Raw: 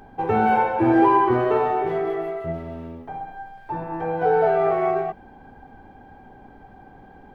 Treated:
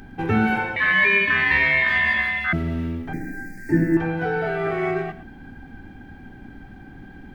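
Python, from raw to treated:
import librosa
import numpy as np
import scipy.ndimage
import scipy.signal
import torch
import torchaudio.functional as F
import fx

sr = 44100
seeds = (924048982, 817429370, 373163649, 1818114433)

y = x + 10.0 ** (-15.5 / 20.0) * np.pad(x, (int(111 * sr / 1000.0), 0))[:len(x)]
y = fx.ring_mod(y, sr, carrier_hz=1400.0, at=(0.76, 2.53))
y = fx.curve_eq(y, sr, hz=(130.0, 280.0, 610.0, 1100.0, 1900.0, 3200.0, 4800.0, 6900.0), db=(0, 12, -2, -22, 12, -26, 4, 14), at=(3.13, 3.97))
y = fx.rider(y, sr, range_db=4, speed_s=0.5)
y = fx.band_shelf(y, sr, hz=690.0, db=-13.5, octaves=1.7)
y = F.gain(torch.from_numpy(y), 7.0).numpy()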